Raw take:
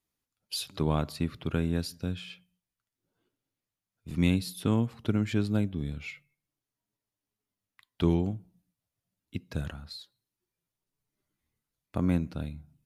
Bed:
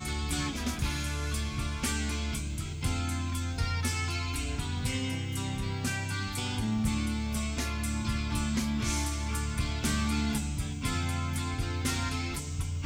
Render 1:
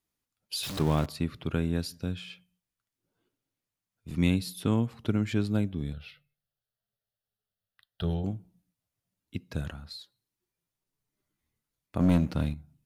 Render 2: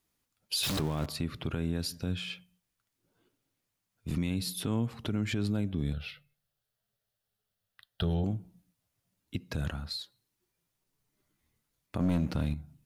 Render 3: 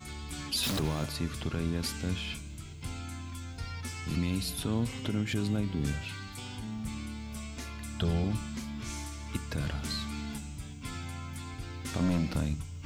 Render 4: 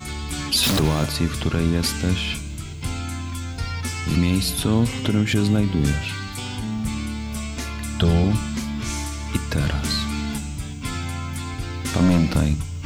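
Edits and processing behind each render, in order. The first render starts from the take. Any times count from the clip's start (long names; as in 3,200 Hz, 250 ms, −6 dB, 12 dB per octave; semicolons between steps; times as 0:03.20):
0:00.63–0:01.06: converter with a step at zero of −31.5 dBFS; 0:05.93–0:08.24: phaser with its sweep stopped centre 1,500 Hz, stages 8; 0:12.00–0:12.54: leveller curve on the samples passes 2
in parallel at −0.5 dB: downward compressor, threshold −34 dBFS, peak gain reduction 14 dB; on the sum: brickwall limiter −21.5 dBFS, peak gain reduction 11 dB
mix in bed −8.5 dB
level +11.5 dB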